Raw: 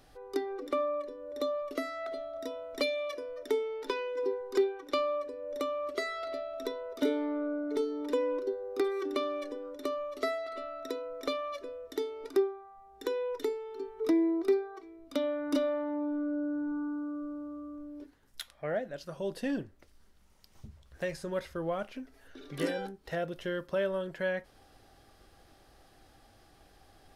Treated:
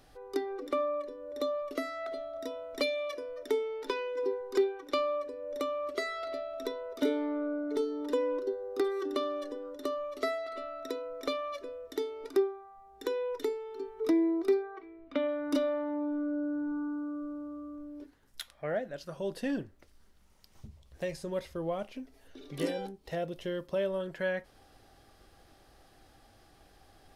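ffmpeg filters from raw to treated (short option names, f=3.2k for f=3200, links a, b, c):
-filter_complex "[0:a]asettb=1/sr,asplit=3[a][b][c];[a]atrim=end=7.734[d];[b]atrim=start=7.73:end=10.04,asetpts=PTS-STARTPTS,afade=t=in:d=0.004:c=qsin,afade=t=out:st=2.306:d=0.004:c=qsin,bandreject=f=2.3k:w=7.9[e];[c]atrim=start=10.036[f];[d][e]acrossfade=d=0.004:c1=hsin:c2=qsin[g];[g][f]acrossfade=d=0.004:c1=qsin:c2=hsin,asplit=3[h][i][j];[h]afade=t=out:st=14.62:d=0.02[k];[i]lowpass=f=2.3k:t=q:w=1.6,afade=t=in:st=14.62:d=0.02,afade=t=out:st=15.27:d=0.02[l];[j]afade=t=in:st=15.27:d=0.02[m];[k][l][m]amix=inputs=3:normalize=0,asettb=1/sr,asplit=3[n][o][p];[n]atrim=end=20.674[q];[o]atrim=start=20.67:end=24,asetpts=PTS-STARTPTS,afade=t=in:d=0.004:c=qsin,afade=t=out:st=3.326:d=0.004:c=qsin,equalizer=f=1.5k:w=2.2:g=-8.5[r];[p]atrim=start=23.996[s];[q][r]acrossfade=d=0.004:c1=hsin:c2=qsin[t];[t][s]acrossfade=d=0.004:c1=qsin:c2=hsin"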